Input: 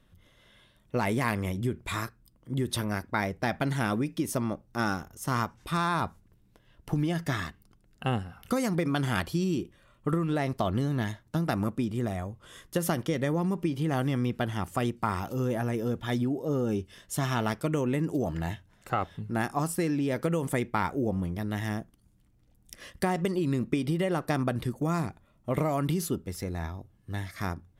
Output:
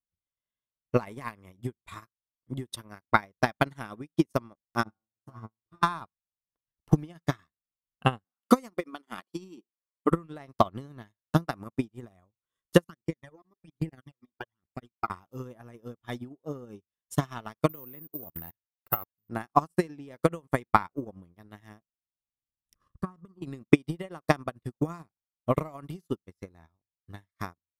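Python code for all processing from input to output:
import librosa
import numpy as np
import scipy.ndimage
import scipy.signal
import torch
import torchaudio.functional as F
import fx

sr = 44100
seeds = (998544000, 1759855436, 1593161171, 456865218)

y = fx.chain(x, sr, fx.tilt_shelf(db=9.0, hz=860.0),
    fx.comb_fb(f0_hz=110.0, decay_s=0.33, harmonics='all', damping=0.0, mix_pct=100), at=(4.83, 5.83))
y = fx.chain(y, sr, fx.brickwall_highpass(low_hz=180.0),
    fx.notch(hz=1600.0, q=14.0), at=(8.24, 10.11))
y = fx.chain(y, sr, fx.peak_eq(hz=110.0, db=-5.5, octaves=0.37),
    fx.level_steps(step_db=14),
    fx.phaser_stages(stages=12, low_hz=140.0, high_hz=1200.0, hz=1.2, feedback_pct=25), at=(12.84, 15.1))
y = fx.chain(y, sr, fx.resample_bad(factor=3, down='filtered', up='zero_stuff'),
    fx.level_steps(step_db=14), at=(17.69, 19.29))
y = fx.chain(y, sr, fx.curve_eq(hz=(140.0, 700.0, 1200.0, 2000.0, 4800.0), db=(0, -17, 2, -24, -17)),
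    fx.env_flatten(amount_pct=50), at=(22.75, 23.42))
y = fx.transient(y, sr, attack_db=10, sustain_db=-7)
y = fx.peak_eq(y, sr, hz=1100.0, db=6.0, octaves=0.33)
y = fx.upward_expand(y, sr, threshold_db=-43.0, expansion=2.5)
y = y * 10.0 ** (1.5 / 20.0)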